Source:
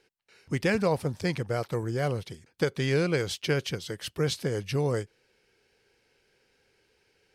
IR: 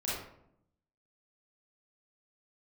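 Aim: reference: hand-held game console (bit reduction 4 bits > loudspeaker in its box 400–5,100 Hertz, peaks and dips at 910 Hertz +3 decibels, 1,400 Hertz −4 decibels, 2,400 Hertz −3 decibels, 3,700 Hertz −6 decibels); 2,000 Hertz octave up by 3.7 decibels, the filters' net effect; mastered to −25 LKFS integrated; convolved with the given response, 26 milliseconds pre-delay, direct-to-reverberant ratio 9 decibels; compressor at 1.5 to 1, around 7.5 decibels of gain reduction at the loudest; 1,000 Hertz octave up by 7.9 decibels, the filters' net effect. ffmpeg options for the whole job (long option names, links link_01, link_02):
-filter_complex "[0:a]equalizer=frequency=1000:width_type=o:gain=8.5,equalizer=frequency=2000:width_type=o:gain=4.5,acompressor=threshold=-39dB:ratio=1.5,asplit=2[link_01][link_02];[1:a]atrim=start_sample=2205,adelay=26[link_03];[link_02][link_03]afir=irnorm=-1:irlink=0,volume=-14dB[link_04];[link_01][link_04]amix=inputs=2:normalize=0,acrusher=bits=3:mix=0:aa=0.000001,highpass=400,equalizer=frequency=910:width_type=q:width=4:gain=3,equalizer=frequency=1400:width_type=q:width=4:gain=-4,equalizer=frequency=2400:width_type=q:width=4:gain=-3,equalizer=frequency=3700:width_type=q:width=4:gain=-6,lowpass=frequency=5100:width=0.5412,lowpass=frequency=5100:width=1.3066,volume=12.5dB"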